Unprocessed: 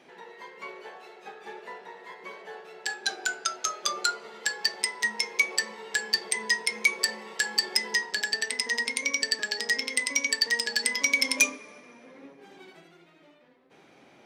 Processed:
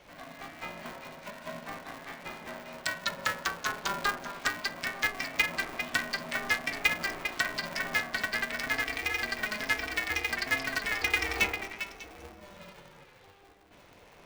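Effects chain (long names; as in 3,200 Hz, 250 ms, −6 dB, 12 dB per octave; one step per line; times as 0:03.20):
treble cut that deepens with the level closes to 2,200 Hz, closed at −27 dBFS
echo through a band-pass that steps 199 ms, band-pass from 630 Hz, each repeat 1.4 octaves, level −3 dB
ring modulator with a square carrier 200 Hz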